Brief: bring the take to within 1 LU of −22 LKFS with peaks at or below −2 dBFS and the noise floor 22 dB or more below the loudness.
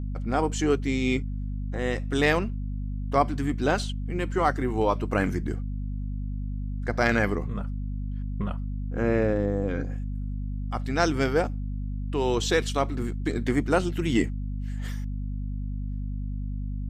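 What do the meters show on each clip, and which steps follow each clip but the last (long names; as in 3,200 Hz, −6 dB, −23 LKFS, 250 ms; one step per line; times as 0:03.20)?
mains hum 50 Hz; hum harmonics up to 250 Hz; level of the hum −28 dBFS; integrated loudness −28.0 LKFS; sample peak −8.5 dBFS; target loudness −22.0 LKFS
→ mains-hum notches 50/100/150/200/250 Hz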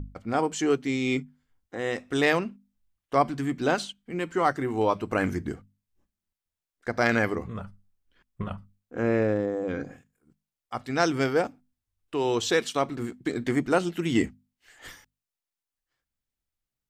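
mains hum none found; integrated loudness −27.5 LKFS; sample peak −9.5 dBFS; target loudness −22.0 LKFS
→ level +5.5 dB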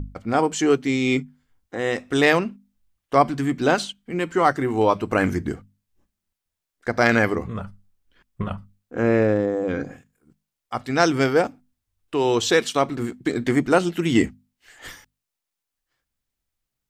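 integrated loudness −22.0 LKFS; sample peak −4.0 dBFS; background noise floor −84 dBFS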